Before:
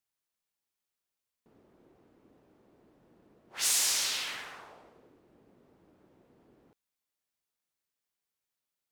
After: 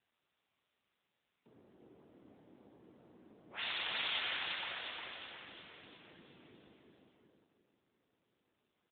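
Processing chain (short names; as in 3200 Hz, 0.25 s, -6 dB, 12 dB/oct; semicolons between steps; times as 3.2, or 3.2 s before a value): feedback echo 0.355 s, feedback 56%, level -3 dB; AMR-NB 7.95 kbps 8000 Hz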